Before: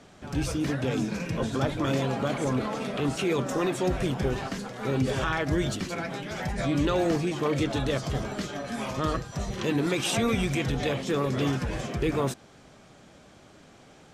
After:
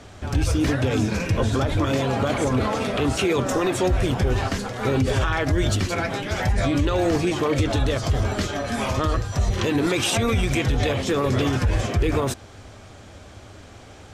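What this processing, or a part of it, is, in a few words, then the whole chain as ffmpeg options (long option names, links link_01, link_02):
car stereo with a boomy subwoofer: -af "lowshelf=frequency=120:width_type=q:width=3:gain=6.5,alimiter=limit=-20.5dB:level=0:latency=1:release=73,volume=8dB"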